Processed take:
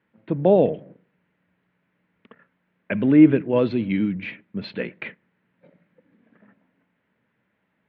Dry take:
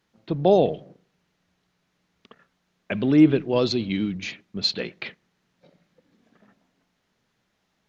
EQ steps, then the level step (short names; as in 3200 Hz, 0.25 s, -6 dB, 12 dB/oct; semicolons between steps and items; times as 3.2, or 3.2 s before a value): speaker cabinet 110–2300 Hz, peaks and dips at 150 Hz -3 dB, 380 Hz -5 dB, 740 Hz -8 dB, 1200 Hz -6 dB; +4.5 dB